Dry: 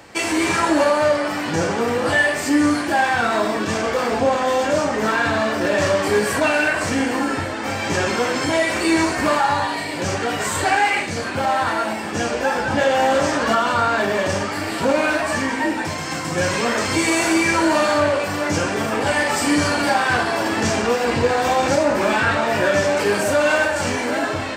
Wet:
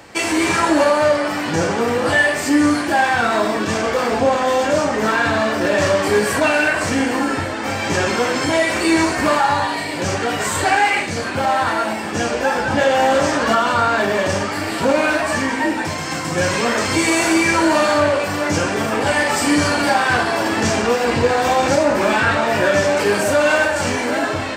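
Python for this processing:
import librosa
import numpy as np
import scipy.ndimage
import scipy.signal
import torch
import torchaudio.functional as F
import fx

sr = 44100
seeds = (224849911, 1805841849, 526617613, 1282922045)

y = F.gain(torch.from_numpy(x), 2.0).numpy()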